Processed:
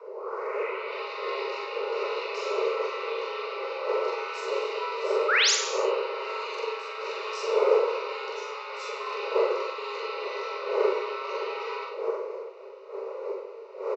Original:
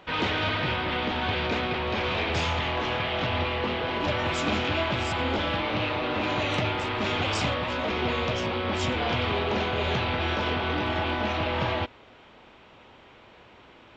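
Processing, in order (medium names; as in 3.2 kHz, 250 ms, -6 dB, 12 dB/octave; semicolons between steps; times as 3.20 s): tape start-up on the opening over 0.97 s; wind noise 260 Hz -23 dBFS; high-pass 63 Hz 12 dB/octave; static phaser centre 2 kHz, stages 8; painted sound rise, 5.28–5.51 s, 870–7300 Hz -16 dBFS; frequency shift +330 Hz; on a send: loudspeakers at several distances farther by 15 m -1 dB, 33 m -10 dB; on the sum: gated-style reverb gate 330 ms falling, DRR 4.5 dB; trim -8.5 dB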